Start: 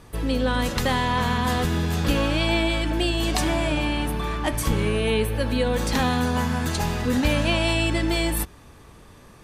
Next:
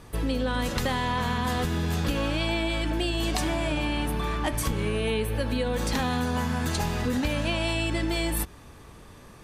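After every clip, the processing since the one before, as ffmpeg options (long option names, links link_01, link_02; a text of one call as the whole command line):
ffmpeg -i in.wav -af "acompressor=threshold=-23dB:ratio=6" out.wav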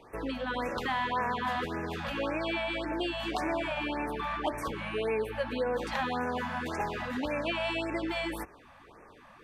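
ffmpeg -i in.wav -filter_complex "[0:a]acrossover=split=300 3200:gain=0.158 1 0.126[link_01][link_02][link_03];[link_01][link_02][link_03]amix=inputs=3:normalize=0,afftfilt=real='re*(1-between(b*sr/1024,340*pow(3900/340,0.5+0.5*sin(2*PI*1.8*pts/sr))/1.41,340*pow(3900/340,0.5+0.5*sin(2*PI*1.8*pts/sr))*1.41))':imag='im*(1-between(b*sr/1024,340*pow(3900/340,0.5+0.5*sin(2*PI*1.8*pts/sr))/1.41,340*pow(3900/340,0.5+0.5*sin(2*PI*1.8*pts/sr))*1.41))':win_size=1024:overlap=0.75" out.wav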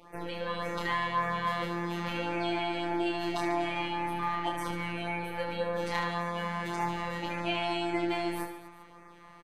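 ffmpeg -i in.wav -af "afftfilt=real='hypot(re,im)*cos(PI*b)':imag='0':win_size=1024:overlap=0.75,aecho=1:1:30|75|142.5|243.8|395.6:0.631|0.398|0.251|0.158|0.1,volume=2.5dB" out.wav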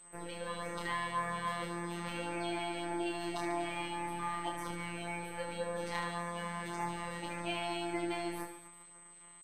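ffmpeg -i in.wav -af "aeval=exprs='sgn(val(0))*max(abs(val(0))-0.00178,0)':channel_layout=same,aeval=exprs='val(0)+0.00355*sin(2*PI*8200*n/s)':channel_layout=same,volume=-5.5dB" out.wav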